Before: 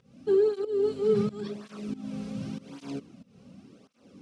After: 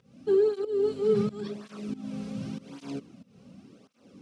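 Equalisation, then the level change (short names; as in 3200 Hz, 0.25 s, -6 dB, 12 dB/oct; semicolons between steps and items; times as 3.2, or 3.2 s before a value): HPF 61 Hz; 0.0 dB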